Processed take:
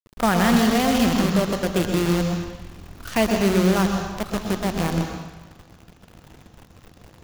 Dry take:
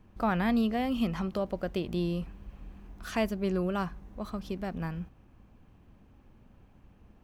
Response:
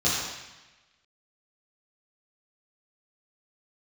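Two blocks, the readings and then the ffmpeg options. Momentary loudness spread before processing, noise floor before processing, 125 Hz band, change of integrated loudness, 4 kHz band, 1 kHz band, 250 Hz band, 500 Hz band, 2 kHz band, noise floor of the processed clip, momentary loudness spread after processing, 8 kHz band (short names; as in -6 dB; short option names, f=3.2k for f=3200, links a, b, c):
18 LU, -59 dBFS, +11.0 dB, +10.5 dB, +15.0 dB, +11.0 dB, +10.0 dB, +10.5 dB, +12.5 dB, -52 dBFS, 13 LU, +23.0 dB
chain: -filter_complex "[0:a]acrusher=bits=6:dc=4:mix=0:aa=0.000001,asplit=2[a][b];[1:a]atrim=start_sample=2205,adelay=113[c];[b][c]afir=irnorm=-1:irlink=0,volume=-17dB[d];[a][d]amix=inputs=2:normalize=0,volume=8dB"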